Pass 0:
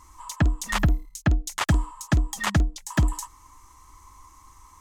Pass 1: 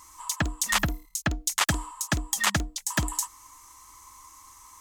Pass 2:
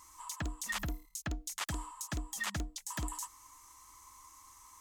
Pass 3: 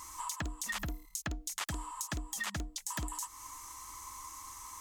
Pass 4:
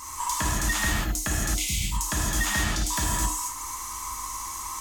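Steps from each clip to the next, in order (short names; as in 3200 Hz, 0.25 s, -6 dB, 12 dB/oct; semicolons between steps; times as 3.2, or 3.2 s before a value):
tilt +2.5 dB/oct
limiter -21 dBFS, peak gain reduction 11 dB; gain -6.5 dB
compressor 4:1, threshold -46 dBFS, peak gain reduction 11.5 dB; gain +9.5 dB
spectral repair 1.52–1.9, 230–2000 Hz before; non-linear reverb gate 0.29 s flat, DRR -5.5 dB; gain +6.5 dB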